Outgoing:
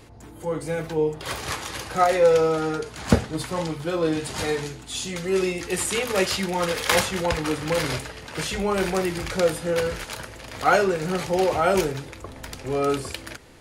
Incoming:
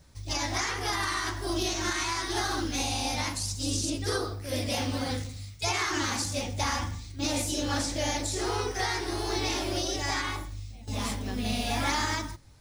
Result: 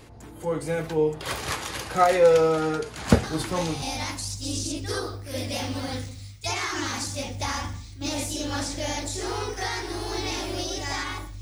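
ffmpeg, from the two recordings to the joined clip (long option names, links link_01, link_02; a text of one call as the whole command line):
ffmpeg -i cue0.wav -i cue1.wav -filter_complex "[1:a]asplit=2[link_01][link_02];[0:a]apad=whole_dur=11.41,atrim=end=11.41,atrim=end=3.822[link_03];[link_02]atrim=start=2.998:end=10.59[link_04];[link_01]atrim=start=2.41:end=3,asetpts=PTS-STARTPTS,volume=-6.5dB,afade=type=in:duration=0.004:curve=hsin,afade=type=out:start_time=0.586:duration=0.004:curve=hsin,adelay=3230[link_05];[link_03][link_04]acrossfade=duration=0.004:curve1=hsin:curve2=hsin[link_06];[link_06][link_05]amix=inputs=2:normalize=0" out.wav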